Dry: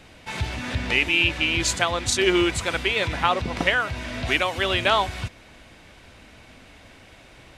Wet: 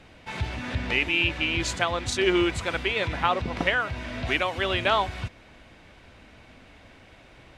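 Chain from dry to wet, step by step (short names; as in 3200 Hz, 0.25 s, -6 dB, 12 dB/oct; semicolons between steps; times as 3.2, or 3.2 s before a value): high shelf 5600 Hz -10.5 dB; gain -2 dB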